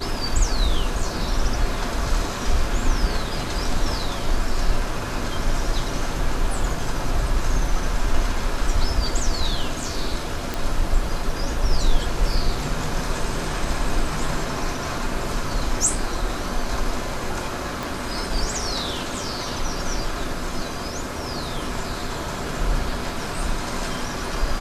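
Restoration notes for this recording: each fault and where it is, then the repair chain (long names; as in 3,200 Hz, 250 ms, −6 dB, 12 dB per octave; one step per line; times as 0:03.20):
0:10.54: click
0:17.83: click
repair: click removal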